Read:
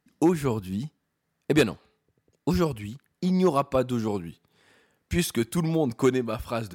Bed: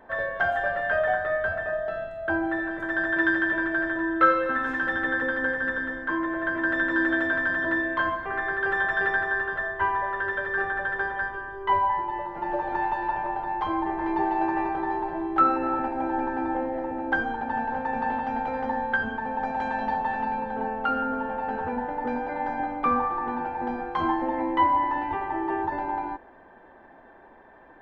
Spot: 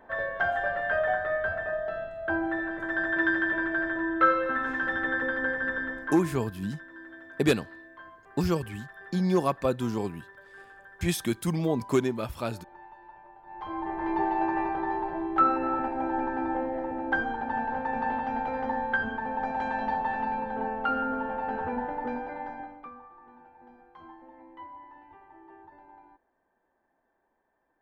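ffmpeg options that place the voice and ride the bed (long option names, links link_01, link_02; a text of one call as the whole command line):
ffmpeg -i stem1.wav -i stem2.wav -filter_complex "[0:a]adelay=5900,volume=-2.5dB[link_01];[1:a]volume=18dB,afade=type=out:start_time=5.88:duration=0.61:silence=0.1,afade=type=in:start_time=13.43:duration=0.68:silence=0.0944061,afade=type=out:start_time=21.86:duration=1.05:silence=0.0794328[link_02];[link_01][link_02]amix=inputs=2:normalize=0" out.wav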